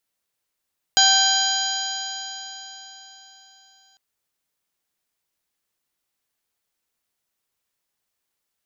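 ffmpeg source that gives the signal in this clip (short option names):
-f lavfi -i "aevalsrc='0.1*pow(10,-3*t/4.04)*sin(2*PI*776.05*t)+0.0891*pow(10,-3*t/4.04)*sin(2*PI*1558.35*t)+0.0133*pow(10,-3*t/4.04)*sin(2*PI*2353.08*t)+0.126*pow(10,-3*t/4.04)*sin(2*PI*3166.25*t)+0.106*pow(10,-3*t/4.04)*sin(2*PI*4003.65*t)+0.133*pow(10,-3*t/4.04)*sin(2*PI*4870.75*t)+0.0316*pow(10,-3*t/4.04)*sin(2*PI*5772.72*t)+0.119*pow(10,-3*t/4.04)*sin(2*PI*6714.35*t)':d=3:s=44100"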